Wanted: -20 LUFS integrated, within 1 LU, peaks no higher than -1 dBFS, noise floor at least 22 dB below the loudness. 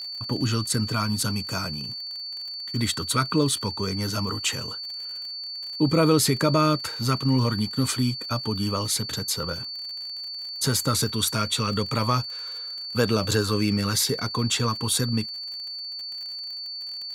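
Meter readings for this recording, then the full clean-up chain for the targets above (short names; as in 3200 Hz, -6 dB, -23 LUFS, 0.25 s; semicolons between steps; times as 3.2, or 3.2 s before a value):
ticks 58/s; steady tone 4500 Hz; tone level -32 dBFS; loudness -25.5 LUFS; peak -7.5 dBFS; loudness target -20.0 LUFS
-> de-click; notch 4500 Hz, Q 30; gain +5.5 dB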